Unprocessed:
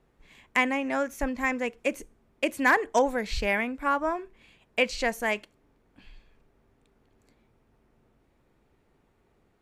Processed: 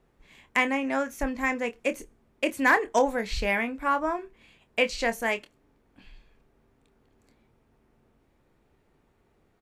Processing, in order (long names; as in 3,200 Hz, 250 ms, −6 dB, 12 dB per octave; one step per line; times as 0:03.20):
double-tracking delay 26 ms −10.5 dB